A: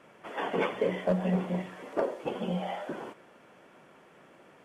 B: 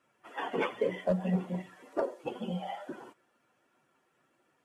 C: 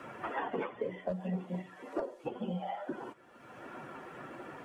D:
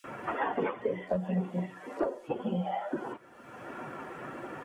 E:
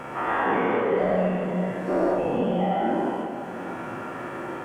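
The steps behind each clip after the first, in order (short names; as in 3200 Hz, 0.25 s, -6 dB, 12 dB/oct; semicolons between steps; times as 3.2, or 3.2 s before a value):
per-bin expansion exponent 1.5
high shelf 3600 Hz -10 dB; three-band squash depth 100%; gain -3 dB
bands offset in time highs, lows 40 ms, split 3800 Hz; gain +5 dB
spectral dilation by 0.24 s; plate-style reverb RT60 4 s, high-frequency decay 0.85×, pre-delay 0 ms, DRR 3.5 dB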